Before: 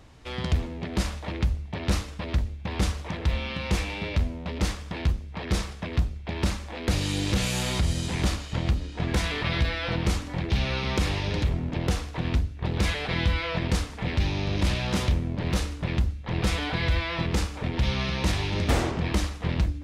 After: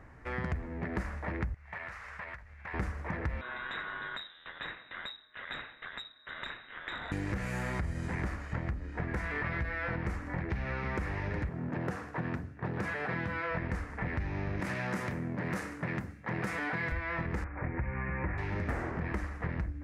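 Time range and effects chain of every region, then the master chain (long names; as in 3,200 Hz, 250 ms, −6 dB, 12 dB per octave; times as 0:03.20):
0:01.54–0:02.74: guitar amp tone stack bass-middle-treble 10-0-10 + downward compressor 8 to 1, threshold −46 dBFS + mid-hump overdrive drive 24 dB, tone 1,500 Hz, clips at −23 dBFS
0:03.41–0:07.12: flanger 1.3 Hz, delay 0.1 ms, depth 7.5 ms, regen −71% + voice inversion scrambler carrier 3,800 Hz + saturating transformer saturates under 820 Hz
0:11.49–0:13.51: high-pass filter 110 Hz 24 dB per octave + parametric band 2,100 Hz −5.5 dB 0.3 octaves
0:14.60–0:16.92: high-pass filter 120 Hz 24 dB per octave + high-shelf EQ 4,600 Hz +9 dB
0:17.44–0:18.38: Butterworth low-pass 2,500 Hz 72 dB per octave + notch comb filter 220 Hz
whole clip: high shelf with overshoot 2,500 Hz −11 dB, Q 3; downward compressor, threshold −29 dBFS; level −2 dB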